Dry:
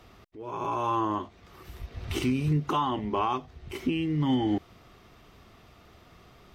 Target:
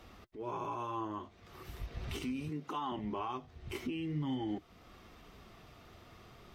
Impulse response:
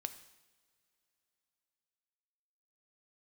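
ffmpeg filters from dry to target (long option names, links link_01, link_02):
-filter_complex "[0:a]asettb=1/sr,asplit=3[link_01][link_02][link_03];[link_01]atrim=end=2.494[link_04];[link_02]atrim=start=2.49:end=2.92,asetpts=PTS-STARTPTS,afade=type=in:duration=0.004:curve=qsin,afade=type=out:start_time=0.426:duration=0.004:curve=qsin,highpass=210[link_05];[link_03]atrim=start=2.916[link_06];[link_04][link_05]acrossfade=duration=0.004:curve1=hsin:curve2=qsin[link_07];[link_07][link_06]acrossfade=duration=0.004:curve1=qsin:curve2=hsin,alimiter=level_in=4dB:limit=-24dB:level=0:latency=1:release=399,volume=-4dB,flanger=delay=3.6:depth=5.5:regen=-58:speed=0.4:shape=sinusoidal,volume=2.5dB"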